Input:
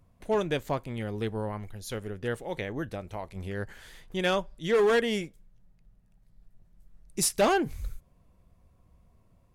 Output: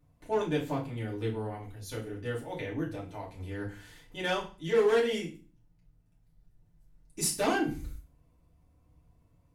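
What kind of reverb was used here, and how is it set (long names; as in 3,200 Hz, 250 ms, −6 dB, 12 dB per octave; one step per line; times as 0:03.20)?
feedback delay network reverb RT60 0.35 s, low-frequency decay 1.5×, high-frequency decay 1×, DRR −5 dB
level −9.5 dB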